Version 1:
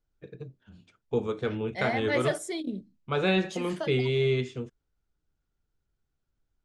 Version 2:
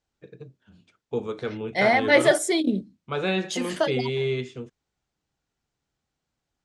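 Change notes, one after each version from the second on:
second voice +11.0 dB
master: add high-pass filter 120 Hz 6 dB per octave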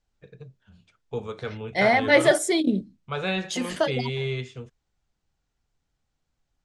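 first voice: add parametric band 300 Hz −11.5 dB 0.79 octaves
master: remove high-pass filter 120 Hz 6 dB per octave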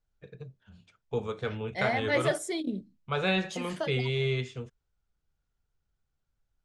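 second voice −10.0 dB

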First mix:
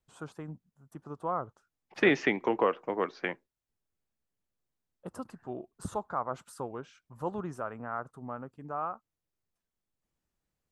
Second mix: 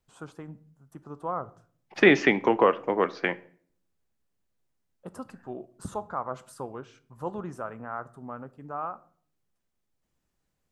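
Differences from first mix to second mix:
second voice +5.5 dB
reverb: on, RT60 0.50 s

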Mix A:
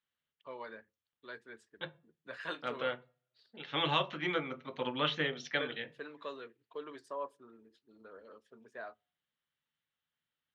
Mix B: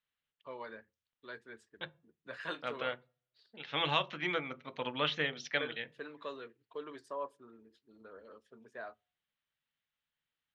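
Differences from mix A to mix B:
second voice: send −6.0 dB
master: add low-shelf EQ 85 Hz +8.5 dB

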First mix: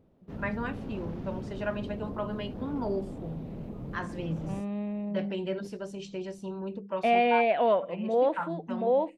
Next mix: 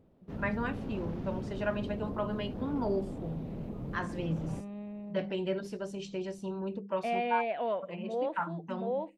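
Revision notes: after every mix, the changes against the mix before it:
second voice −8.5 dB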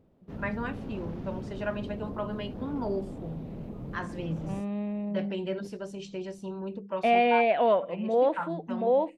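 second voice +9.5 dB

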